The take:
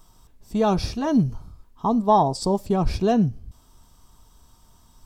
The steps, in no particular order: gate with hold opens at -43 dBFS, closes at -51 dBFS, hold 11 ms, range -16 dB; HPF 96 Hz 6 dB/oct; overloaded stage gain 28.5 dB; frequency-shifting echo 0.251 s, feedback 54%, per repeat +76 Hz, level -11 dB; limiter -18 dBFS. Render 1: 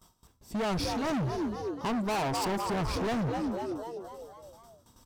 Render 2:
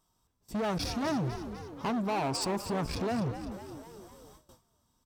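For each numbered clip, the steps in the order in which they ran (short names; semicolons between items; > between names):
gate with hold > frequency-shifting echo > HPF > overloaded stage > limiter; limiter > overloaded stage > frequency-shifting echo > HPF > gate with hold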